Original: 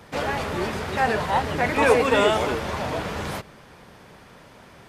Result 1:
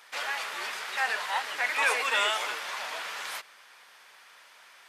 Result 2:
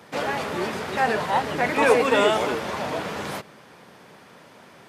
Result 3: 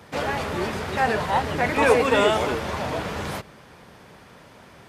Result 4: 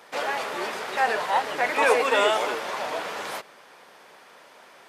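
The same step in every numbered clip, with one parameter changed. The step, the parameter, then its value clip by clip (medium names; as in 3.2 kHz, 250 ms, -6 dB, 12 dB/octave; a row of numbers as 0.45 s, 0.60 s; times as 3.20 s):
high-pass, cutoff frequency: 1.4 kHz, 160 Hz, 44 Hz, 500 Hz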